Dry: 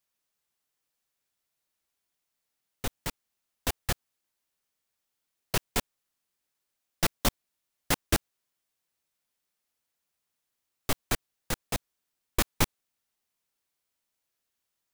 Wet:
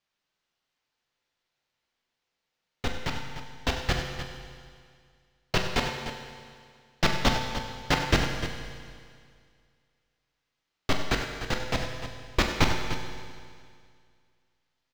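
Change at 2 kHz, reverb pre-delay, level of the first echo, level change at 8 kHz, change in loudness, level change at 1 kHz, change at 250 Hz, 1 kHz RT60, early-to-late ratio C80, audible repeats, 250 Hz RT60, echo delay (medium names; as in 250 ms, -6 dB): +6.5 dB, 8 ms, -10.0 dB, -4.5 dB, +2.0 dB, +6.0 dB, +5.0 dB, 2.1 s, 4.0 dB, 3, 2.0 s, 43 ms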